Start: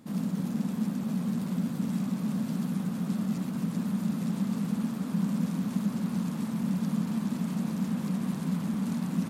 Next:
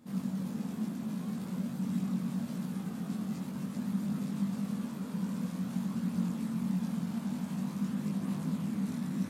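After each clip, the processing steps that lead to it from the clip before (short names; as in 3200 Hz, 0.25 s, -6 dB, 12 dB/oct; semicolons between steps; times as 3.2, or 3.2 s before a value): chorus voices 2, 0.24 Hz, delay 21 ms, depth 1.5 ms; gain -1.5 dB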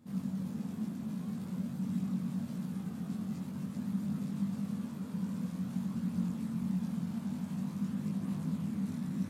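bell 89 Hz +9.5 dB 1.7 oct; gain -5 dB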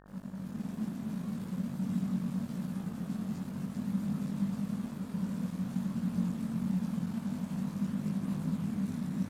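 AGC gain up to 8 dB; crossover distortion -46.5 dBFS; buzz 50 Hz, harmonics 36, -53 dBFS -3 dB/oct; gain -5.5 dB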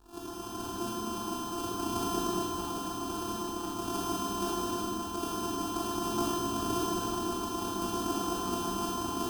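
sample sorter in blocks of 128 samples; fixed phaser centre 560 Hz, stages 6; Schroeder reverb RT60 1.7 s, combs from 25 ms, DRR -5 dB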